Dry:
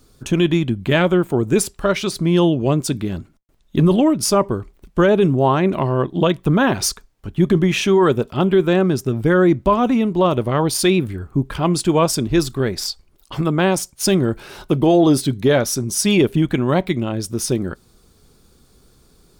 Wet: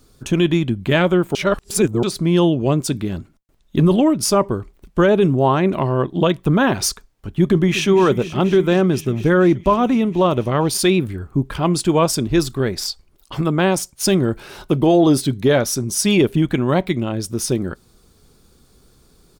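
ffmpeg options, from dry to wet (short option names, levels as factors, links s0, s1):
-filter_complex "[0:a]asplit=2[s0][s1];[s1]afade=t=in:st=7.43:d=0.01,afade=t=out:st=7.89:d=0.01,aecho=0:1:240|480|720|960|1200|1440|1680|1920|2160|2400|2640|2880:0.199526|0.169597|0.144158|0.122534|0.104154|0.0885308|0.0752512|0.0639635|0.054369|0.0462137|0.0392816|0.0333894[s2];[s0][s2]amix=inputs=2:normalize=0,asplit=3[s3][s4][s5];[s3]atrim=end=1.352[s6];[s4]atrim=start=1.348:end=2.032,asetpts=PTS-STARTPTS,areverse[s7];[s5]atrim=start=2.028[s8];[s6][s7]acrossfade=d=0.004:c1=hsin:c2=hsin[s9];[s9][s8]acrossfade=d=0.004:c1=hsin:c2=hsin"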